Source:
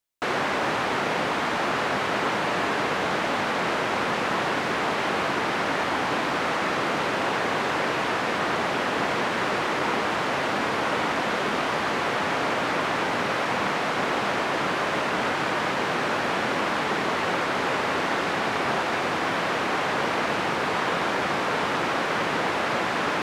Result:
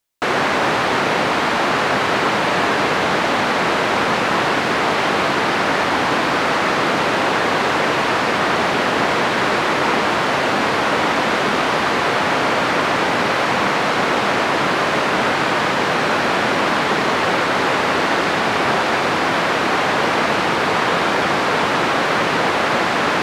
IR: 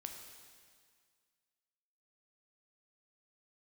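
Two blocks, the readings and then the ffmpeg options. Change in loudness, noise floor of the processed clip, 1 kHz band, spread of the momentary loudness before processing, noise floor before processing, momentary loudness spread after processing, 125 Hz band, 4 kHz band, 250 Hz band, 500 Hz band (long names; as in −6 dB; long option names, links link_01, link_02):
+8.0 dB, −19 dBFS, +8.0 dB, 0 LU, −27 dBFS, 0 LU, +7.5 dB, +8.5 dB, +8.0 dB, +7.5 dB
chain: -filter_complex "[0:a]asplit=2[link_01][link_02];[link_02]equalizer=frequency=4300:width_type=o:width=0.77:gain=10[link_03];[1:a]atrim=start_sample=2205,adelay=144[link_04];[link_03][link_04]afir=irnorm=-1:irlink=0,volume=-9dB[link_05];[link_01][link_05]amix=inputs=2:normalize=0,volume=7.5dB"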